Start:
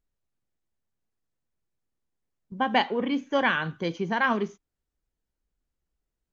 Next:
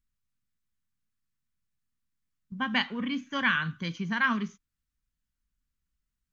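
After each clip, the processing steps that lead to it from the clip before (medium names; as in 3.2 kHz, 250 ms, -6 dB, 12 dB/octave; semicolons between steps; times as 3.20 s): high-order bell 530 Hz -15 dB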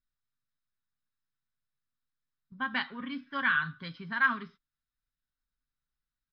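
rippled Chebyshev low-pass 5.3 kHz, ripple 9 dB; comb 7.4 ms, depth 40%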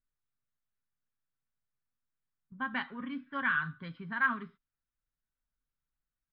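distance through air 400 m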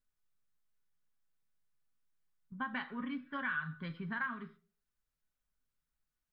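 compression 3:1, threshold -38 dBFS, peak gain reduction 11.5 dB; reverberation RT60 0.40 s, pre-delay 5 ms, DRR 9 dB; trim +1 dB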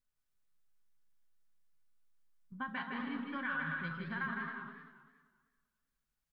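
on a send: bouncing-ball echo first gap 160 ms, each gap 0.65×, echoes 5; on the sum: modulated delay 195 ms, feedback 43%, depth 197 cents, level -11 dB; trim -2 dB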